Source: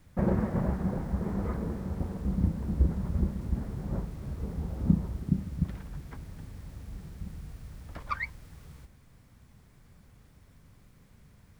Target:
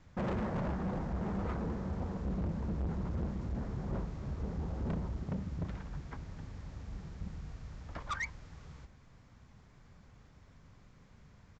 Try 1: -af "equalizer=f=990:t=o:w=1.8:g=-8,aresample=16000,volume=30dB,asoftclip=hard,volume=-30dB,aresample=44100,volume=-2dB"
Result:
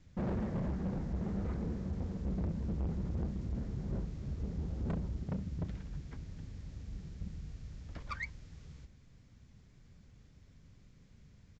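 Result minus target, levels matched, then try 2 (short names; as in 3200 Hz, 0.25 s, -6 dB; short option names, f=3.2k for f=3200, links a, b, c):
1000 Hz band -6.0 dB
-af "equalizer=f=990:t=o:w=1.8:g=4,aresample=16000,volume=30dB,asoftclip=hard,volume=-30dB,aresample=44100,volume=-2dB"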